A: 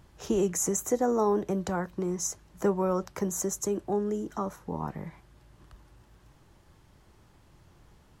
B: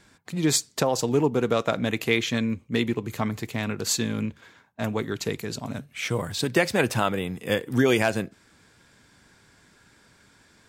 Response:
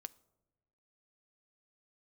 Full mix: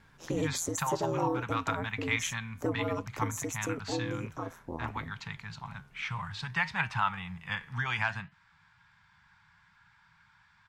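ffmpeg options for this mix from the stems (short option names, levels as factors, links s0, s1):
-filter_complex "[0:a]aeval=exprs='val(0)*sin(2*PI*84*n/s)':c=same,volume=0.708[s0];[1:a]firequalizer=gain_entry='entry(170,0);entry(280,-27);entry(500,-25);entry(870,7);entry(12000,-29)':delay=0.05:min_phase=1,flanger=delay=6.2:depth=6.9:regen=84:speed=0.59:shape=sinusoidal,volume=0.708[s1];[s0][s1]amix=inputs=2:normalize=0"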